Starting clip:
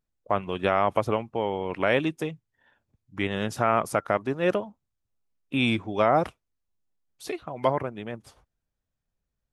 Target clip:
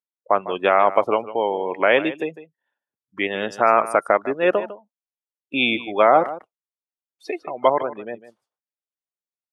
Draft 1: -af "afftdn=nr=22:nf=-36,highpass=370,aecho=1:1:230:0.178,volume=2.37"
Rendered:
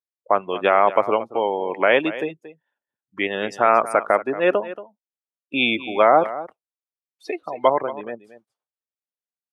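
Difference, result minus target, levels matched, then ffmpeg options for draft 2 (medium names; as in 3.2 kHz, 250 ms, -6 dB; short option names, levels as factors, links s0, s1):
echo 78 ms late
-af "afftdn=nr=22:nf=-36,highpass=370,aecho=1:1:152:0.178,volume=2.37"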